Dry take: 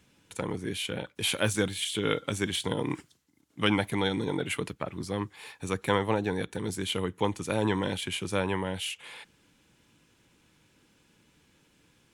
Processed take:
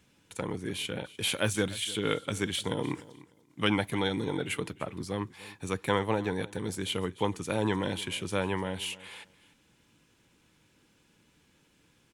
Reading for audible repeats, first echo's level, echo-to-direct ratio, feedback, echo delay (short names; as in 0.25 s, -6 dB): 2, -19.0 dB, -19.0 dB, 19%, 0.299 s